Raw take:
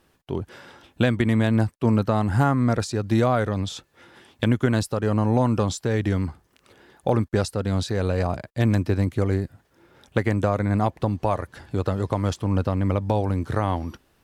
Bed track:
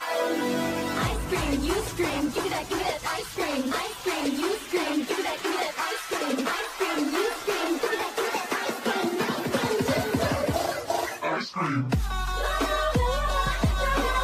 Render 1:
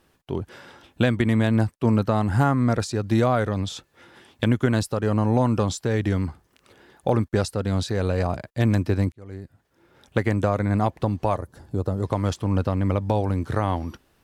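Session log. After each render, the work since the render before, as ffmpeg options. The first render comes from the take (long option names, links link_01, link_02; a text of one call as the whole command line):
ffmpeg -i in.wav -filter_complex "[0:a]asettb=1/sr,asplit=3[link_01][link_02][link_03];[link_01]atrim=end=11.374[link_04];[link_02]atrim=start=11.37:end=12.03,asetpts=PTS-STARTPTS,afade=type=in:duration=0.004:curve=qsin,afade=type=out:start_time=0.656:duration=0.004:curve=qsin,equalizer=frequency=2400:width_type=o:width=2.1:gain=-14.5[link_05];[link_03]atrim=start=12.026[link_06];[link_04][link_05]acrossfade=duration=0.004:curve1=hsin:curve2=qsin[link_07];[link_07][link_06]acrossfade=duration=0.004:curve1=qsin:curve2=hsin,asplit=2[link_08][link_09];[link_08]atrim=end=9.12,asetpts=PTS-STARTPTS,afade=type=out:start_time=9.116:duration=0.004:curve=hsin[link_10];[link_09]atrim=start=9.12,asetpts=PTS-STARTPTS,afade=type=in:duration=1.08[link_11];[link_10][link_11]concat=n=2:v=0:a=1" out.wav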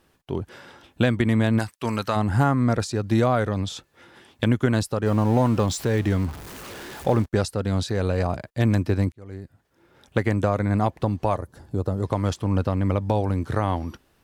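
ffmpeg -i in.wav -filter_complex "[0:a]asplit=3[link_01][link_02][link_03];[link_01]afade=type=out:start_time=1.58:duration=0.02[link_04];[link_02]tiltshelf=frequency=820:gain=-9,afade=type=in:start_time=1.58:duration=0.02,afade=type=out:start_time=2.15:duration=0.02[link_05];[link_03]afade=type=in:start_time=2.15:duration=0.02[link_06];[link_04][link_05][link_06]amix=inputs=3:normalize=0,asettb=1/sr,asplit=3[link_07][link_08][link_09];[link_07]atrim=end=5.064[link_10];[link_08]atrim=start=5.06:end=7.26,asetpts=PTS-STARTPTS,afade=type=in:duration=0.004:curve=qsin,afade=type=out:start_time=2.196:duration=0.004:curve=qsin,aeval=exprs='val(0)+0.5*0.0211*sgn(val(0))':channel_layout=same[link_11];[link_09]atrim=start=7.256[link_12];[link_10][link_11]acrossfade=duration=0.004:curve1=hsin:curve2=qsin[link_13];[link_13][link_12]acrossfade=duration=0.004:curve1=qsin:curve2=hsin" out.wav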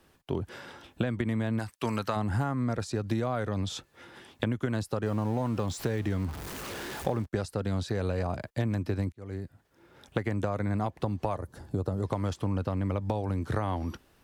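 ffmpeg -i in.wav -filter_complex "[0:a]acrossover=split=120|1200|2000[link_01][link_02][link_03][link_04];[link_04]alimiter=level_in=3dB:limit=-24dB:level=0:latency=1:release=89,volume=-3dB[link_05];[link_01][link_02][link_03][link_05]amix=inputs=4:normalize=0,acompressor=threshold=-26dB:ratio=6" out.wav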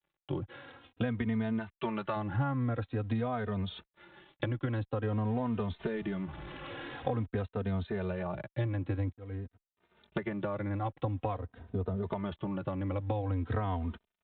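ffmpeg -i in.wav -filter_complex "[0:a]aresample=8000,aeval=exprs='sgn(val(0))*max(abs(val(0))-0.00133,0)':channel_layout=same,aresample=44100,asplit=2[link_01][link_02];[link_02]adelay=3,afreqshift=-0.48[link_03];[link_01][link_03]amix=inputs=2:normalize=1" out.wav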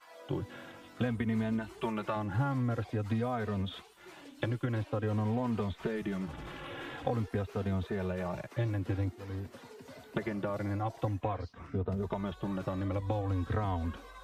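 ffmpeg -i in.wav -i bed.wav -filter_complex "[1:a]volume=-25.5dB[link_01];[0:a][link_01]amix=inputs=2:normalize=0" out.wav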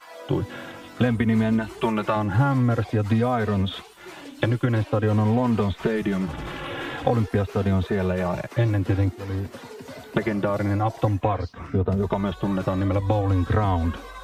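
ffmpeg -i in.wav -af "volume=11dB" out.wav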